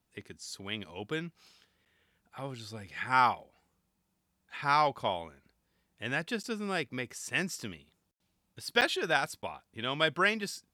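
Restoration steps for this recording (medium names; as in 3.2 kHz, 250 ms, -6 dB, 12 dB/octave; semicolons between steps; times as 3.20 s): interpolate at 1.85/6.43/8.81/9.42 s, 8.8 ms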